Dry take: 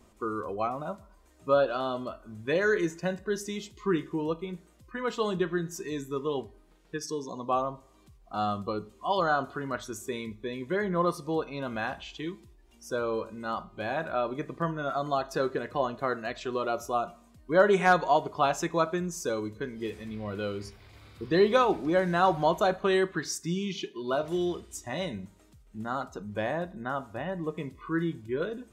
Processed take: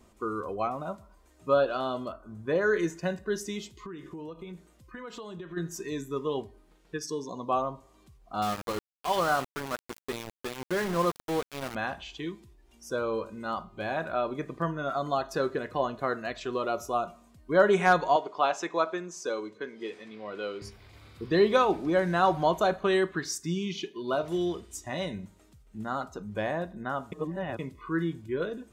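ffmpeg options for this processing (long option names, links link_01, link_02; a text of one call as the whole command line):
ffmpeg -i in.wav -filter_complex "[0:a]asettb=1/sr,asplit=3[link_01][link_02][link_03];[link_01]atrim=end=2.124[link_04];[link_02]atrim=start=2.12:end=2.74,asetpts=PTS-STARTPTS,afade=type=in:duration=0.004:curve=qsin,afade=type=out:start_time=0.616:duration=0.004:curve=qsin,highshelf=frequency=1700:width_type=q:width=1.5:gain=-6.5[link_05];[link_03]atrim=start=2.736[link_06];[link_04][link_05]acrossfade=duration=0.004:curve1=hsin:curve2=qsin[link_07];[link_07][link_06]acrossfade=duration=0.004:curve1=qsin:curve2=hsin,asplit=3[link_08][link_09][link_10];[link_08]afade=type=out:start_time=3.73:duration=0.02[link_11];[link_09]acompressor=threshold=-37dB:ratio=12:attack=3.2:release=140:knee=1:detection=peak,afade=type=in:start_time=3.73:duration=0.02,afade=type=out:start_time=5.56:duration=0.02[link_12];[link_10]afade=type=in:start_time=5.56:duration=0.02[link_13];[link_11][link_12][link_13]amix=inputs=3:normalize=0,asettb=1/sr,asplit=3[link_14][link_15][link_16];[link_14]atrim=end=8.424[link_17];[link_15]atrim=start=8.42:end=11.75,asetpts=PTS-STARTPTS,afade=type=in:duration=0.004:curve=qsin,afade=type=out:start_time=3.326:duration=0.004:curve=qsin,aeval=exprs='val(0)*gte(abs(val(0)),0.0266)':channel_layout=same[link_18];[link_16]atrim=start=11.746[link_19];[link_17][link_18]acrossfade=duration=0.004:curve1=hsin:curve2=qsin[link_20];[link_20][link_19]acrossfade=duration=0.004:curve1=qsin:curve2=hsin,asettb=1/sr,asplit=3[link_21][link_22][link_23];[link_21]atrim=end=18.164[link_24];[link_22]atrim=start=18.16:end=20.62,asetpts=PTS-STARTPTS,afade=type=in:duration=0.004:curve=qsin,afade=type=out:start_time=2.456:duration=0.004:curve=qsin,highpass=350,lowpass=6000[link_25];[link_23]atrim=start=20.616[link_26];[link_24][link_25]acrossfade=duration=0.004:curve1=hsin:curve2=qsin[link_27];[link_27][link_26]acrossfade=duration=0.004:curve1=qsin:curve2=hsin,asplit=3[link_28][link_29][link_30];[link_28]atrim=end=27.122[link_31];[link_29]atrim=start=27.118:end=27.592,asetpts=PTS-STARTPTS,areverse[link_32];[link_30]atrim=start=27.588[link_33];[link_31][link_32]acrossfade=duration=0.004:curve1=hsin:curve2=hsin[link_34];[link_34][link_33]acrossfade=duration=0.004:curve1=hsin:curve2=hsin" out.wav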